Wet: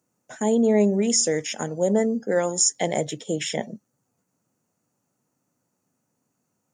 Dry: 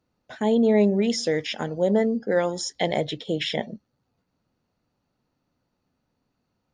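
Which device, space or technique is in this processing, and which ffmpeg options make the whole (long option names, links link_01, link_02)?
budget condenser microphone: -af "highpass=frequency=110:width=0.5412,highpass=frequency=110:width=1.3066,highshelf=frequency=5500:width_type=q:width=3:gain=10.5"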